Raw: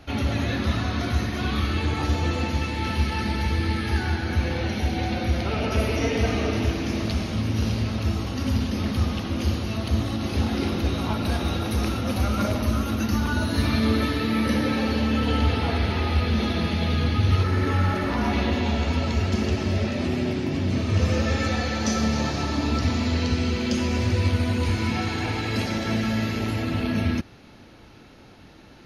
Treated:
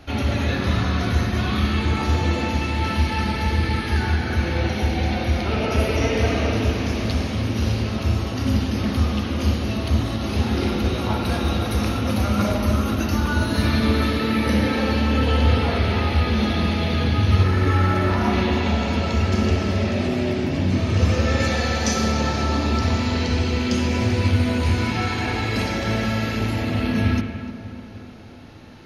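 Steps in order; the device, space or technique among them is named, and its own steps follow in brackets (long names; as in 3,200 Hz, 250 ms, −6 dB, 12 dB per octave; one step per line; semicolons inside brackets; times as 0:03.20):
dub delay into a spring reverb (feedback echo with a low-pass in the loop 299 ms, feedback 61%, low-pass 2,300 Hz, level −12 dB; spring reverb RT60 1 s, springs 38/53 ms, chirp 70 ms, DRR 4.5 dB)
0:21.40–0:22.12: high-shelf EQ 5,400 Hz +5.5 dB
level +2 dB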